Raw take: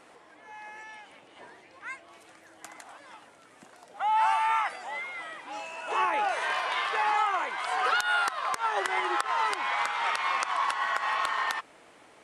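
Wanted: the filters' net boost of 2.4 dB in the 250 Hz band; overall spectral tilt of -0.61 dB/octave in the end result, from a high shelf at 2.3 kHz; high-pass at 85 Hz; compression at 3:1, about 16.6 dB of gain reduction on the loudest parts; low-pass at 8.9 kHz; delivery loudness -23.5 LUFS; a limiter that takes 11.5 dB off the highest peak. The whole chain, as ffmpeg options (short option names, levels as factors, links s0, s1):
-af "highpass=85,lowpass=8900,equalizer=f=250:t=o:g=4,highshelf=f=2300:g=7,acompressor=threshold=0.00631:ratio=3,volume=10.6,alimiter=limit=0.211:level=0:latency=1"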